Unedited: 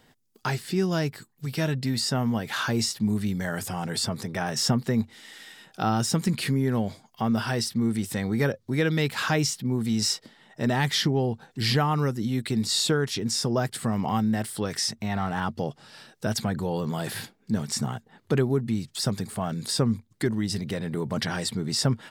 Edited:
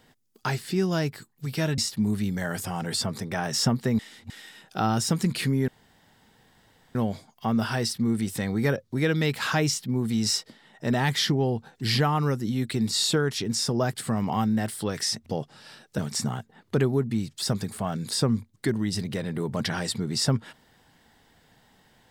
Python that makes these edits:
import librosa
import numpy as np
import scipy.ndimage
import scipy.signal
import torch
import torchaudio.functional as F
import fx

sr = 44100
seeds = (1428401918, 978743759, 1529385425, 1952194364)

y = fx.edit(x, sr, fx.cut(start_s=1.78, length_s=1.03),
    fx.reverse_span(start_s=5.02, length_s=0.31),
    fx.insert_room_tone(at_s=6.71, length_s=1.27),
    fx.cut(start_s=15.02, length_s=0.52),
    fx.cut(start_s=16.26, length_s=1.29), tone=tone)